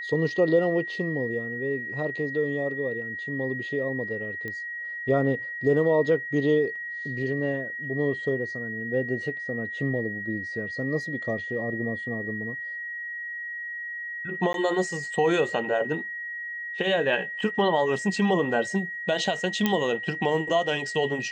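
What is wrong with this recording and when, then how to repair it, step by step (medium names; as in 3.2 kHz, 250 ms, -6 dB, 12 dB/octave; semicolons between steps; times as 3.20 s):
whine 1.9 kHz -32 dBFS
4.48 s: pop -22 dBFS
14.53–14.54 s: dropout 12 ms
19.66 s: pop -9 dBFS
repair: de-click; band-stop 1.9 kHz, Q 30; interpolate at 14.53 s, 12 ms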